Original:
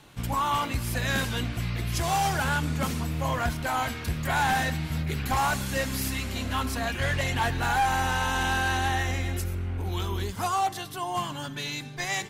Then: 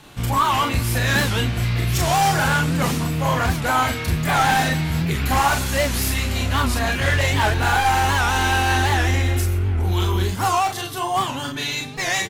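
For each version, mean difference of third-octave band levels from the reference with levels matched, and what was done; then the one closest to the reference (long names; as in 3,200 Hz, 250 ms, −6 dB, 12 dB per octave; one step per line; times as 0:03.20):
2.0 dB: hard clipping −23 dBFS, distortion −18 dB
on a send: ambience of single reflections 32 ms −5.5 dB, 43 ms −5 dB
on the sum: wow of a warped record 78 rpm, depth 160 cents
level +6.5 dB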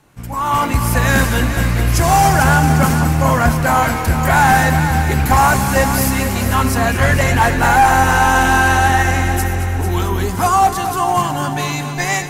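3.5 dB: parametric band 3,500 Hz −9.5 dB 0.88 octaves
automatic gain control gain up to 14 dB
echo machine with several playback heads 224 ms, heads first and second, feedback 46%, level −11 dB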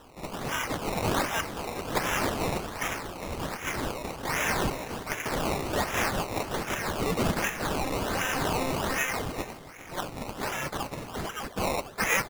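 6.5 dB: Butterworth high-pass 1,900 Hz 48 dB per octave
sample-and-hold swept by an LFO 19×, swing 100% 1.3 Hz
single-tap delay 404 ms −18.5 dB
level +7 dB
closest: first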